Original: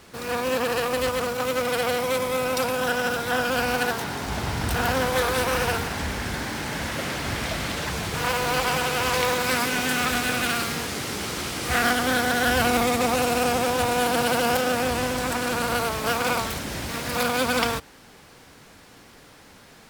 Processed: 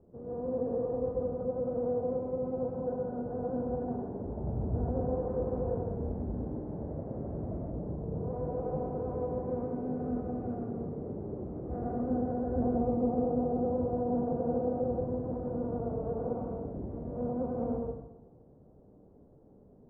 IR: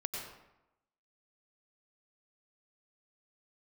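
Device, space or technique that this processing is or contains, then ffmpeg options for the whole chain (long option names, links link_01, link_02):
next room: -filter_complex "[0:a]lowpass=frequency=580:width=0.5412,lowpass=frequency=580:width=1.3066[link_01];[1:a]atrim=start_sample=2205[link_02];[link_01][link_02]afir=irnorm=-1:irlink=0,asettb=1/sr,asplit=3[link_03][link_04][link_05];[link_03]atrim=end=7.714[link_06];[link_04]atrim=start=7.71:end=8.31,asetpts=PTS-STARTPTS,afade=type=in:duration=0.004:curve=qsin,afade=type=out:start_time=0.596:duration=0.004:curve=qsin,lowpass=frequency=1300:poles=1[link_07];[link_05]atrim=start=8.306[link_08];[link_06][link_07]acrossfade=duration=0.004:curve1=hsin:curve2=qsin[link_09];[link_09][link_08]acrossfade=duration=0.004:curve1=qsin:curve2=hsin,volume=-6dB"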